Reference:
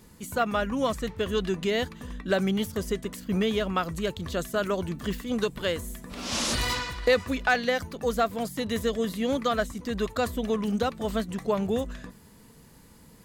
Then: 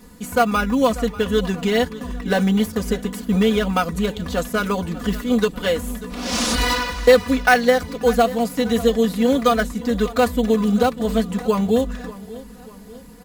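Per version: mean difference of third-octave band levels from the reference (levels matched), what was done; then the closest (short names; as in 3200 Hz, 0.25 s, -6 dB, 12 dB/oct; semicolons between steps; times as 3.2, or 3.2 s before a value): 3.5 dB: in parallel at -9 dB: sample-and-hold 12×; on the sum: comb 4.1 ms, depth 83%; feedback echo 0.591 s, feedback 49%, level -18 dB; gain +3 dB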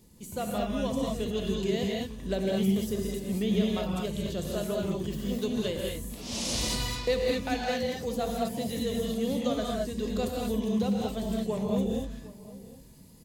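6.0 dB: bell 1400 Hz -13 dB 1.2 oct; outdoor echo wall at 130 m, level -18 dB; non-linear reverb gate 0.25 s rising, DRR -2 dB; gain -4.5 dB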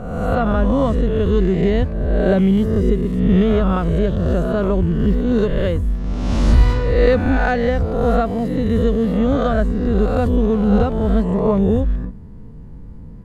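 9.5 dB: spectral swells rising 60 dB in 1.21 s; tilt -4.5 dB/oct; mismatched tape noise reduction decoder only; gain +1 dB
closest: first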